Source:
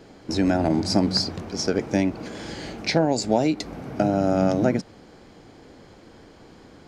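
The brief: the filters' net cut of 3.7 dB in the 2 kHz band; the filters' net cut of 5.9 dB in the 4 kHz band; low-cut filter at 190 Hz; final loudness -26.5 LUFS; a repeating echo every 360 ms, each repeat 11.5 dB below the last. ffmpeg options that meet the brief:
-af "highpass=190,equalizer=f=2000:t=o:g=-3,equalizer=f=4000:t=o:g=-7.5,aecho=1:1:360|720|1080:0.266|0.0718|0.0194,volume=0.841"

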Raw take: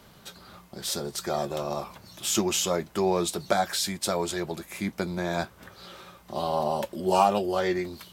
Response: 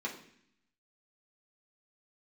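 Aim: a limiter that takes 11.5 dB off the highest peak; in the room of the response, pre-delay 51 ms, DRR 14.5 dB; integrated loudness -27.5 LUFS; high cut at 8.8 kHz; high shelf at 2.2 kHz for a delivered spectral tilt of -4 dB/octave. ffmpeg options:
-filter_complex "[0:a]lowpass=8800,highshelf=f=2200:g=-4,alimiter=limit=0.0891:level=0:latency=1,asplit=2[s0][s1];[1:a]atrim=start_sample=2205,adelay=51[s2];[s1][s2]afir=irnorm=-1:irlink=0,volume=0.133[s3];[s0][s3]amix=inputs=2:normalize=0,volume=1.78"

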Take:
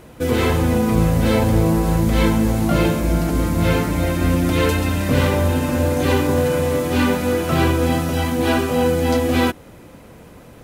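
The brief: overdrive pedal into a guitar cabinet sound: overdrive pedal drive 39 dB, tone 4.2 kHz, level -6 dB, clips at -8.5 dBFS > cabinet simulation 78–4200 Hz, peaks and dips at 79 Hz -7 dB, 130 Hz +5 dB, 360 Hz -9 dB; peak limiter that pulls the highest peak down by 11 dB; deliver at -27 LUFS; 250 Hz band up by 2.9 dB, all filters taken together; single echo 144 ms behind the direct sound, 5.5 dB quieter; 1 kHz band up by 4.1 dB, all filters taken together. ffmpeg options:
-filter_complex "[0:a]equalizer=f=250:t=o:g=5,equalizer=f=1000:t=o:g=5,alimiter=limit=0.237:level=0:latency=1,aecho=1:1:144:0.531,asplit=2[s0][s1];[s1]highpass=f=720:p=1,volume=89.1,asoftclip=type=tanh:threshold=0.376[s2];[s0][s2]amix=inputs=2:normalize=0,lowpass=f=4200:p=1,volume=0.501,highpass=78,equalizer=f=79:t=q:w=4:g=-7,equalizer=f=130:t=q:w=4:g=5,equalizer=f=360:t=q:w=4:g=-9,lowpass=f=4200:w=0.5412,lowpass=f=4200:w=1.3066,volume=0.266"

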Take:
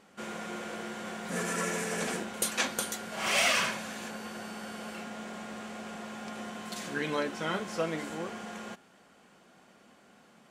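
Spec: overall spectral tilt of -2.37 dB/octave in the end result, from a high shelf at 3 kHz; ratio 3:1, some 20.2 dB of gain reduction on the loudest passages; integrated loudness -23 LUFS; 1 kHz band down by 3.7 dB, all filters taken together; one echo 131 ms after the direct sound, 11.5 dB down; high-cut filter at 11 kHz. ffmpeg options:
-af "lowpass=11000,equalizer=f=1000:t=o:g=-6,highshelf=f=3000:g=5,acompressor=threshold=0.00316:ratio=3,aecho=1:1:131:0.266,volume=16.8"

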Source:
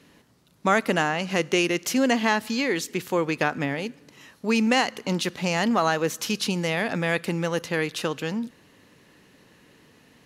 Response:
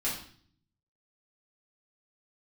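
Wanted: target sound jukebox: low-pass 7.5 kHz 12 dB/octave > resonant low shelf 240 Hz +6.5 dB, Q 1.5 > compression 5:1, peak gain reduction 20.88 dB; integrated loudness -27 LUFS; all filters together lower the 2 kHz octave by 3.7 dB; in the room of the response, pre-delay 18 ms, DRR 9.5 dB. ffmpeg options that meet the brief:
-filter_complex "[0:a]equalizer=f=2000:t=o:g=-4.5,asplit=2[s0][s1];[1:a]atrim=start_sample=2205,adelay=18[s2];[s1][s2]afir=irnorm=-1:irlink=0,volume=0.168[s3];[s0][s3]amix=inputs=2:normalize=0,lowpass=7500,lowshelf=f=240:t=q:w=1.5:g=6.5,acompressor=threshold=0.0158:ratio=5,volume=3.55"

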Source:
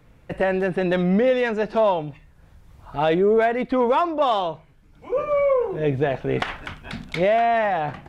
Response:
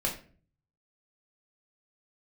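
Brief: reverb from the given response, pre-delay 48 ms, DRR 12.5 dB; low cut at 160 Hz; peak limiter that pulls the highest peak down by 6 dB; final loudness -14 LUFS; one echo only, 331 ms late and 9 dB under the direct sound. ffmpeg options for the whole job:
-filter_complex "[0:a]highpass=160,alimiter=limit=0.168:level=0:latency=1,aecho=1:1:331:0.355,asplit=2[s0][s1];[1:a]atrim=start_sample=2205,adelay=48[s2];[s1][s2]afir=irnorm=-1:irlink=0,volume=0.112[s3];[s0][s3]amix=inputs=2:normalize=0,volume=3.16"

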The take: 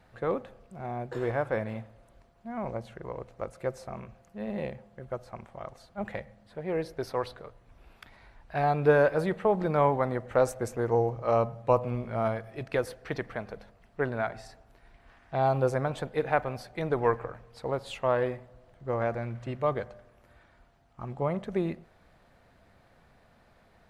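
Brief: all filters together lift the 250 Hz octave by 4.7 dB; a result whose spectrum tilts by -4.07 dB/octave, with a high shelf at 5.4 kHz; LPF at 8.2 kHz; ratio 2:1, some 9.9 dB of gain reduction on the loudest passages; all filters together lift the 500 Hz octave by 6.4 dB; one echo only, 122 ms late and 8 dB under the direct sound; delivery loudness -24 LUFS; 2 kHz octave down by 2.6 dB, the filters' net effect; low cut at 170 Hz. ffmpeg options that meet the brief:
-af "highpass=170,lowpass=8200,equalizer=f=250:t=o:g=5.5,equalizer=f=500:t=o:g=6.5,equalizer=f=2000:t=o:g=-3.5,highshelf=f=5400:g=-6.5,acompressor=threshold=0.0398:ratio=2,aecho=1:1:122:0.398,volume=2.24"

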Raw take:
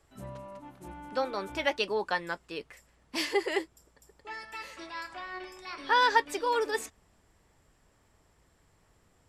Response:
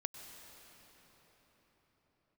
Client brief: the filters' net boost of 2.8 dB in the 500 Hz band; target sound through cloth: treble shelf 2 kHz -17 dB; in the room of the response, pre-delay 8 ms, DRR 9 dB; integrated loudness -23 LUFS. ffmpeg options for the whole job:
-filter_complex "[0:a]equalizer=f=500:t=o:g=4.5,asplit=2[s0][s1];[1:a]atrim=start_sample=2205,adelay=8[s2];[s1][s2]afir=irnorm=-1:irlink=0,volume=0.422[s3];[s0][s3]amix=inputs=2:normalize=0,highshelf=f=2000:g=-17,volume=2.82"

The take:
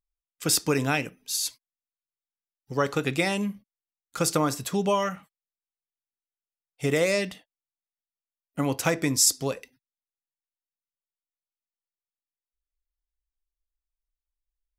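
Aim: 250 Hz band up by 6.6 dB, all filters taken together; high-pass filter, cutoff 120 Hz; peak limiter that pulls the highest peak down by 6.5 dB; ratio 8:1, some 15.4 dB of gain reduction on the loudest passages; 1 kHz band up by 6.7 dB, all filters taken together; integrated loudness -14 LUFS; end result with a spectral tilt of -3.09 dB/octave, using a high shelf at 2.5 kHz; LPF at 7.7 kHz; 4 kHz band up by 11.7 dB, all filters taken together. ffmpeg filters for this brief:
-af "highpass=120,lowpass=7700,equalizer=f=250:t=o:g=8.5,equalizer=f=1000:t=o:g=6,highshelf=f=2500:g=7.5,equalizer=f=4000:t=o:g=8.5,acompressor=threshold=0.0562:ratio=8,volume=7.5,alimiter=limit=0.841:level=0:latency=1"

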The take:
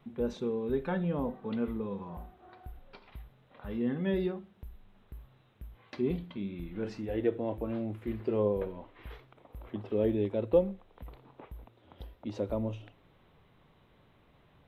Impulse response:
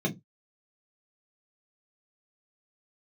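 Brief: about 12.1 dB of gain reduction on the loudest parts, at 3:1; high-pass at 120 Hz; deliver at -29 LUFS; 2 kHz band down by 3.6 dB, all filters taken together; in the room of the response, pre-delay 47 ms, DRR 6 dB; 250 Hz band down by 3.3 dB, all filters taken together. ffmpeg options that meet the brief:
-filter_complex "[0:a]highpass=120,equalizer=f=250:t=o:g=-4,equalizer=f=2000:t=o:g=-4.5,acompressor=threshold=0.0141:ratio=3,asplit=2[s0][s1];[1:a]atrim=start_sample=2205,adelay=47[s2];[s1][s2]afir=irnorm=-1:irlink=0,volume=0.2[s3];[s0][s3]amix=inputs=2:normalize=0,volume=2.37"

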